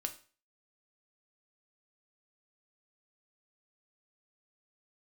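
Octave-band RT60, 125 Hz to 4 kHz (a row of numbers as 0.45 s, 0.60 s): 0.40 s, 0.35 s, 0.40 s, 0.40 s, 0.40 s, 0.40 s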